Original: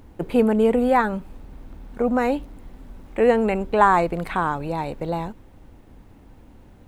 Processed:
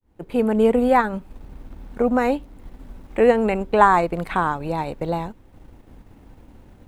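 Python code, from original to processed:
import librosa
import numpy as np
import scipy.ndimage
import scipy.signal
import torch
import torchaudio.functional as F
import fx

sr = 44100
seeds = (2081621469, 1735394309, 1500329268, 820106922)

y = fx.fade_in_head(x, sr, length_s=0.66)
y = fx.transient(y, sr, attack_db=1, sustain_db=-5)
y = y * 10.0 ** (1.5 / 20.0)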